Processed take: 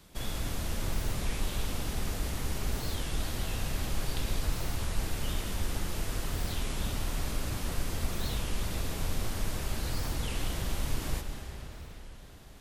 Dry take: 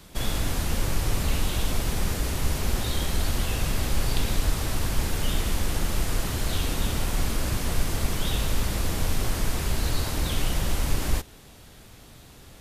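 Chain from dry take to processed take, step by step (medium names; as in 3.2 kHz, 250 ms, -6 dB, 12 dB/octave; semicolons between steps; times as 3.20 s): algorithmic reverb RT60 4.6 s, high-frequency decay 0.85×, pre-delay 95 ms, DRR 5 dB; warped record 33 1/3 rpm, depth 250 cents; trim -8 dB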